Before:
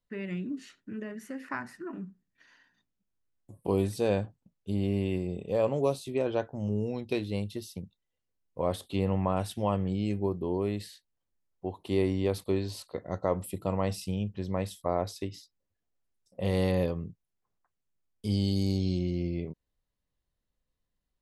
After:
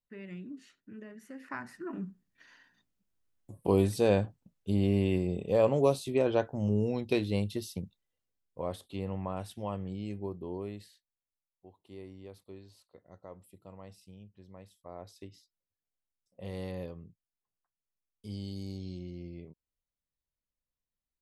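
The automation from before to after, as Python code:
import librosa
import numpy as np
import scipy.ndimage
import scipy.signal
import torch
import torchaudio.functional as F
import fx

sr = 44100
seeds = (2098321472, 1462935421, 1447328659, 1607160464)

y = fx.gain(x, sr, db=fx.line((1.21, -8.5), (2.04, 2.0), (7.82, 2.0), (8.83, -8.0), (10.56, -8.0), (11.68, -20.0), (14.74, -20.0), (15.24, -12.0)))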